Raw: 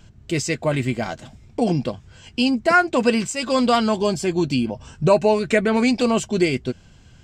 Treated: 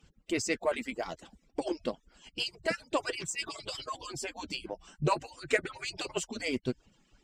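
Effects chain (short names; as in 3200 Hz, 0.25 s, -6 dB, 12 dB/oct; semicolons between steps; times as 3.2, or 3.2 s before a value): median-filter separation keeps percussive; added harmonics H 6 -40 dB, 7 -32 dB, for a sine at -5.5 dBFS; gain -6 dB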